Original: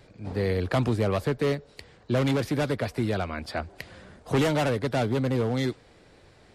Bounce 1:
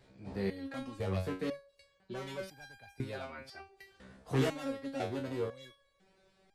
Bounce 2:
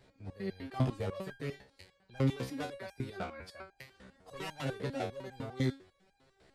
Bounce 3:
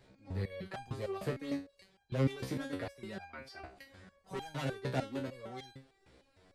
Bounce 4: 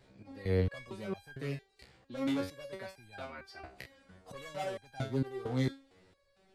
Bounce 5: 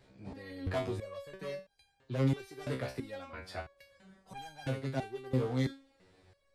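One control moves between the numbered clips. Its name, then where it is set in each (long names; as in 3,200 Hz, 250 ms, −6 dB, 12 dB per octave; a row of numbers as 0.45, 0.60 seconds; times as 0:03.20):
step-sequenced resonator, speed: 2, 10, 6.6, 4.4, 3 Hertz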